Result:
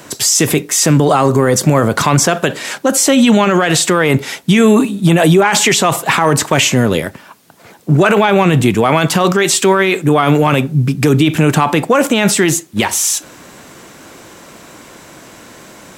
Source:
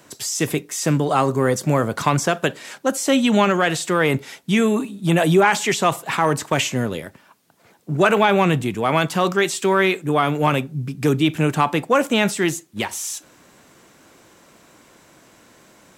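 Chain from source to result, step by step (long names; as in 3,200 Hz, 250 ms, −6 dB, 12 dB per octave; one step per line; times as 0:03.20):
boost into a limiter +14.5 dB
level −1 dB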